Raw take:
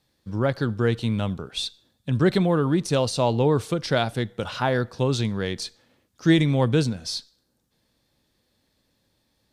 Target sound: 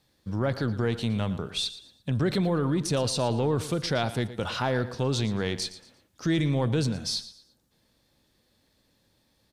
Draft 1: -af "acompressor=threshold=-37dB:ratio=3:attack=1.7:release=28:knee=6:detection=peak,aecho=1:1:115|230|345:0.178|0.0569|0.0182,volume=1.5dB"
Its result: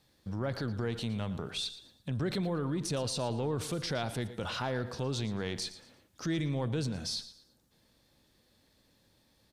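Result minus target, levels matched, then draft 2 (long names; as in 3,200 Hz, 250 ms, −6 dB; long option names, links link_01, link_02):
downward compressor: peak gain reduction +7.5 dB
-af "acompressor=threshold=-26dB:ratio=3:attack=1.7:release=28:knee=6:detection=peak,aecho=1:1:115|230|345:0.178|0.0569|0.0182,volume=1.5dB"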